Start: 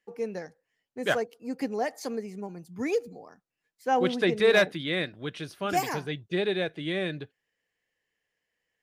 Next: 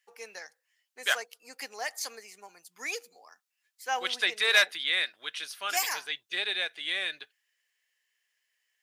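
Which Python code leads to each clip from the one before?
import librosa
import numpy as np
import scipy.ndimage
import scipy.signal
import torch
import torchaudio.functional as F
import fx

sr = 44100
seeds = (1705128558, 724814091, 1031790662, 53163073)

y = scipy.signal.sosfilt(scipy.signal.butter(2, 1100.0, 'highpass', fs=sr, output='sos'), x)
y = fx.high_shelf(y, sr, hz=2300.0, db=9.0)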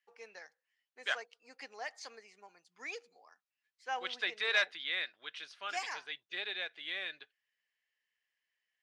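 y = scipy.ndimage.gaussian_filter1d(x, 1.6, mode='constant')
y = F.gain(torch.from_numpy(y), -6.5).numpy()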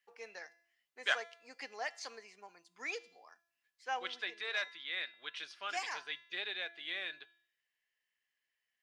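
y = fx.rider(x, sr, range_db=5, speed_s=0.5)
y = fx.comb_fb(y, sr, f0_hz=340.0, decay_s=0.65, harmonics='all', damping=0.0, mix_pct=60)
y = F.gain(torch.from_numpy(y), 5.0).numpy()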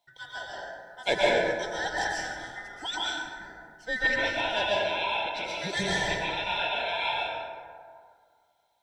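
y = fx.band_swap(x, sr, width_hz=1000)
y = fx.rev_plate(y, sr, seeds[0], rt60_s=2.0, hf_ratio=0.4, predelay_ms=110, drr_db=-6.5)
y = F.gain(torch.from_numpy(y), 5.5).numpy()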